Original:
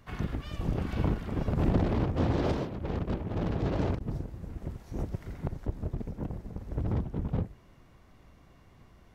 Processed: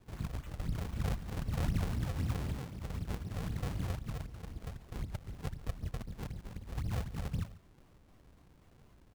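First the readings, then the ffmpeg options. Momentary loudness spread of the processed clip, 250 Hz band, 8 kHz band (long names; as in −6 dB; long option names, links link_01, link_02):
10 LU, −10.0 dB, can't be measured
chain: -filter_complex "[0:a]acrossover=split=210|2400[link_01][link_02][link_03];[link_02]acompressor=threshold=-49dB:ratio=6[link_04];[link_01][link_04][link_03]amix=inputs=3:normalize=0,acrusher=samples=41:mix=1:aa=0.000001:lfo=1:lforange=65.6:lforate=3.9,aecho=1:1:142:0.112,volume=-4.5dB"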